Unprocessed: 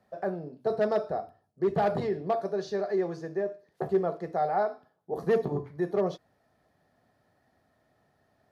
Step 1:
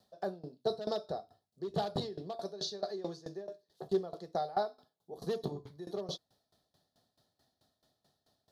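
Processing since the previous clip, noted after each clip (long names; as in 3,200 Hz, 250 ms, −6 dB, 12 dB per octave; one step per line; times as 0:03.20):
high shelf with overshoot 2,900 Hz +9.5 dB, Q 3
tremolo with a ramp in dB decaying 4.6 Hz, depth 19 dB
level −1.5 dB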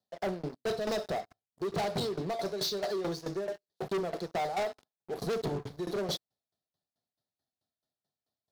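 high-pass filter 53 Hz 12 dB per octave
leveller curve on the samples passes 5
level −7.5 dB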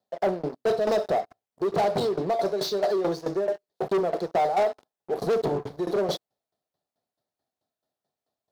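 parametric band 600 Hz +10 dB 2.6 octaves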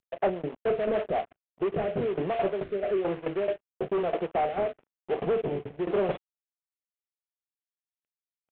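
variable-slope delta modulation 16 kbit/s
rotating-speaker cabinet horn 7 Hz, later 1.1 Hz, at 0:00.71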